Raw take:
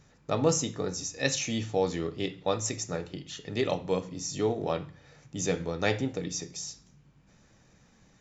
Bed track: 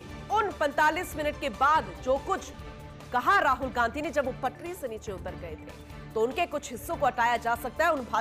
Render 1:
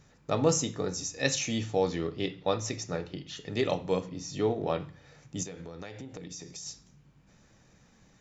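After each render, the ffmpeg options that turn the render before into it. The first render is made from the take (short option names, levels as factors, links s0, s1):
-filter_complex "[0:a]asettb=1/sr,asplit=3[s0][s1][s2];[s0]atrim=end=1.874[s3];[s1]atrim=start=1.87:end=3.36,asetpts=PTS-STARTPTS,afade=t=in:d=0.004:c=qsin,afade=t=out:st=1.486:d=0.004:c=qsin,lowpass=f=6000:w=0.5412,lowpass=f=6000:w=1.3066[s4];[s2]atrim=start=3.356[s5];[s3][s4]acrossfade=d=0.004:c1=hsin:c2=qsin[s6];[s6][s5]acrossfade=d=0.004:c1=qsin:c2=hsin,asettb=1/sr,asplit=3[s7][s8][s9];[s7]atrim=end=4.064[s10];[s8]atrim=start=4.06:end=4.8,asetpts=PTS-STARTPTS,afade=t=in:d=0.004:c=qsin,afade=t=out:st=0.736:d=0.004:c=qsin,lowpass=4600[s11];[s9]atrim=start=4.796[s12];[s10][s11]acrossfade=d=0.004:c1=hsin:c2=qsin[s13];[s13][s12]acrossfade=d=0.004:c1=qsin:c2=hsin,asettb=1/sr,asplit=3[s14][s15][s16];[s14]atrim=end=5.434[s17];[s15]atrim=start=5.43:end=6.66,asetpts=PTS-STARTPTS,afade=t=in:d=0.004:c=qsin,afade=t=out:st=1.226:d=0.004:c=qsin,acompressor=threshold=0.0126:ratio=10:attack=3.2:release=140:knee=1:detection=peak[s18];[s16]atrim=start=6.656[s19];[s17][s18]acrossfade=d=0.004:c1=hsin:c2=qsin[s20];[s20][s19]acrossfade=d=0.004:c1=qsin:c2=hsin"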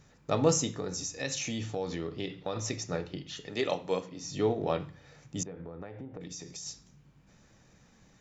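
-filter_complex "[0:a]asettb=1/sr,asplit=3[s0][s1][s2];[s0]atrim=end=0.724[s3];[s1]atrim=start=0.72:end=2.56,asetpts=PTS-STARTPTS,afade=t=in:d=0.004:c=qsin,afade=t=out:st=1.836:d=0.004:c=qsin,acompressor=threshold=0.0282:ratio=3:attack=3.2:release=140:knee=1:detection=peak[s4];[s2]atrim=start=2.556[s5];[s3][s4]acrossfade=d=0.004:c1=hsin:c2=qsin[s6];[s6][s5]acrossfade=d=0.004:c1=qsin:c2=hsin,asettb=1/sr,asplit=3[s7][s8][s9];[s7]atrim=end=3.474[s10];[s8]atrim=start=3.47:end=4.23,asetpts=PTS-STARTPTS,afade=t=in:d=0.004:c=qsin,afade=t=out:st=0.756:d=0.004:c=qsin,highpass=f=340:p=1[s11];[s9]atrim=start=4.226[s12];[s10][s11]acrossfade=d=0.004:c1=hsin:c2=qsin[s13];[s13][s12]acrossfade=d=0.004:c1=qsin:c2=hsin,asettb=1/sr,asplit=3[s14][s15][s16];[s14]atrim=end=5.434[s17];[s15]atrim=start=5.43:end=6.21,asetpts=PTS-STARTPTS,afade=t=in:d=0.004:c=qsin,afade=t=out:st=0.776:d=0.004:c=qsin,lowpass=1400[s18];[s16]atrim=start=6.206[s19];[s17][s18]acrossfade=d=0.004:c1=hsin:c2=qsin[s20];[s20][s19]acrossfade=d=0.004:c1=qsin:c2=hsin"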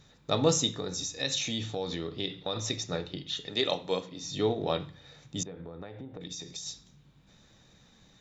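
-af "equalizer=f=3700:w=4.7:g=13.5"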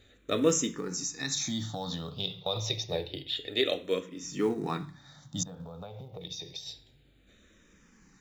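-filter_complex "[0:a]asplit=2[s0][s1];[s1]acrusher=bits=5:mode=log:mix=0:aa=0.000001,volume=0.398[s2];[s0][s2]amix=inputs=2:normalize=0,asplit=2[s3][s4];[s4]afreqshift=-0.28[s5];[s3][s5]amix=inputs=2:normalize=1"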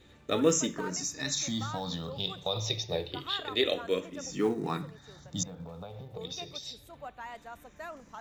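-filter_complex "[1:a]volume=0.126[s0];[0:a][s0]amix=inputs=2:normalize=0"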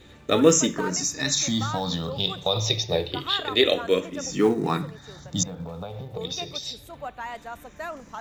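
-af "volume=2.51"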